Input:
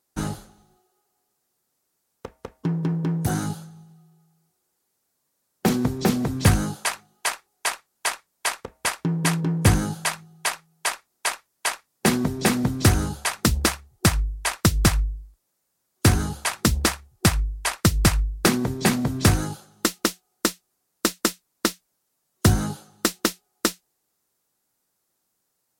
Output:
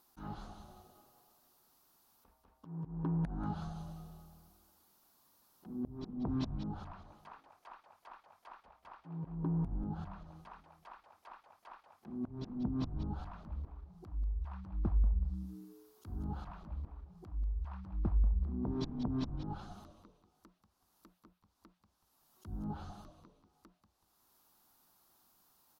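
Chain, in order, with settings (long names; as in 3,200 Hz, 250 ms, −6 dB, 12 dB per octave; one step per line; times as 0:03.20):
treble cut that deepens with the level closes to 470 Hz, closed at −18.5 dBFS
octave-band graphic EQ 125/500/1,000/2,000/8,000 Hz −10/−11/+5/−10/−12 dB
downward compressor 2.5 to 1, threshold −34 dBFS, peak gain reduction 11 dB
volume swells 702 ms
echo with shifted repeats 188 ms, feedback 37%, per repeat −120 Hz, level −9.5 dB
level +10 dB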